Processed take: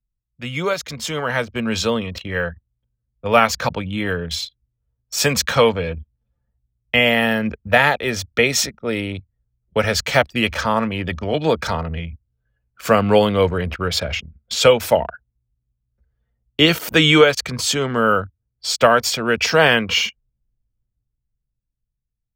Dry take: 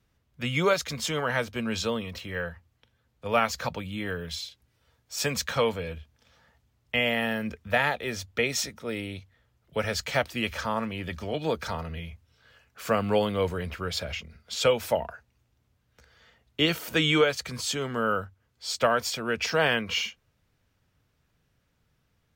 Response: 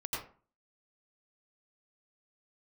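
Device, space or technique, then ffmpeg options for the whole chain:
voice memo with heavy noise removal: -af "anlmdn=0.631,dynaudnorm=f=170:g=17:m=11.5dB,volume=1dB"

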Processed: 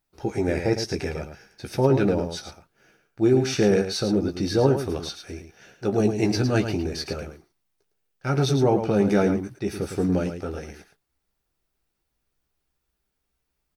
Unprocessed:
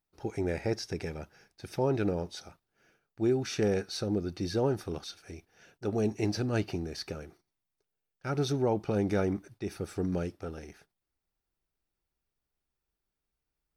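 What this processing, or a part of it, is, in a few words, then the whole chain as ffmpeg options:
slapback doubling: -filter_complex "[0:a]asplit=3[a][b][c];[b]adelay=15,volume=-6dB[d];[c]adelay=109,volume=-8dB[e];[a][d][e]amix=inputs=3:normalize=0,volume=7dB"

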